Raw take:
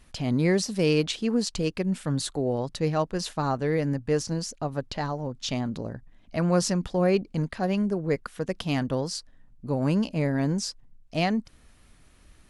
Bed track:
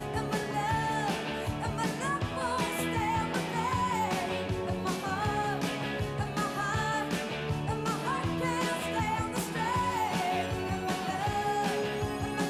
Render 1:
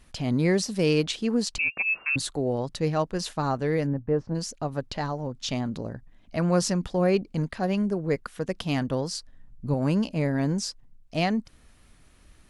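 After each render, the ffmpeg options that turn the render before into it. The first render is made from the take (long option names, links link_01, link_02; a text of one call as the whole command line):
ffmpeg -i in.wav -filter_complex "[0:a]asettb=1/sr,asplit=3[link_01][link_02][link_03];[link_01]atrim=end=1.584[link_04];[link_02]atrim=start=1.58:end=2.16,asetpts=PTS-STARTPTS,afade=type=in:duration=0.004:curve=qsin,afade=type=out:start_time=0.576:duration=0.004:curve=qsin,lowpass=frequency=2400:width_type=q:width=0.5098,lowpass=frequency=2400:width_type=q:width=0.6013,lowpass=frequency=2400:width_type=q:width=0.9,lowpass=frequency=2400:width_type=q:width=2.563,afreqshift=-2800[link_05];[link_03]atrim=start=2.156[link_06];[link_04][link_05]acrossfade=duration=0.004:curve1=hsin:curve2=qsin[link_07];[link_07][link_06]acrossfade=duration=0.004:curve1=qsin:curve2=hsin,asplit=3[link_08][link_09][link_10];[link_08]afade=type=out:start_time=3.86:duration=0.02[link_11];[link_09]lowpass=1100,afade=type=in:start_time=3.86:duration=0.02,afade=type=out:start_time=4.34:duration=0.02[link_12];[link_10]afade=type=in:start_time=4.34:duration=0.02[link_13];[link_11][link_12][link_13]amix=inputs=3:normalize=0,asettb=1/sr,asplit=3[link_14][link_15][link_16];[link_14]atrim=end=9.034[link_17];[link_15]atrim=start=9.03:end=9.74,asetpts=PTS-STARTPTS,afade=type=in:duration=0.004:curve=qsin,afade=type=out:start_time=0.706:duration=0.004:curve=qsin,asubboost=boost=6:cutoff=250[link_18];[link_16]atrim=start=9.736[link_19];[link_17][link_18]acrossfade=duration=0.004:curve1=hsin:curve2=qsin[link_20];[link_20][link_19]acrossfade=duration=0.004:curve1=qsin:curve2=hsin" out.wav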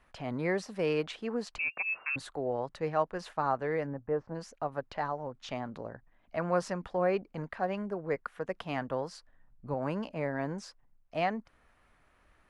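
ffmpeg -i in.wav -filter_complex "[0:a]acrossover=split=510 2200:gain=0.224 1 0.126[link_01][link_02][link_03];[link_01][link_02][link_03]amix=inputs=3:normalize=0" out.wav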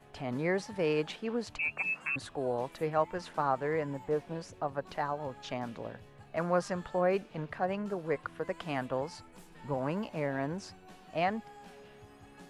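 ffmpeg -i in.wav -i bed.wav -filter_complex "[1:a]volume=-22dB[link_01];[0:a][link_01]amix=inputs=2:normalize=0" out.wav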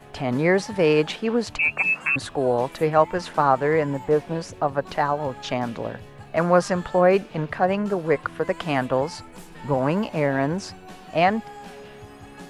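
ffmpeg -i in.wav -af "volume=11.5dB" out.wav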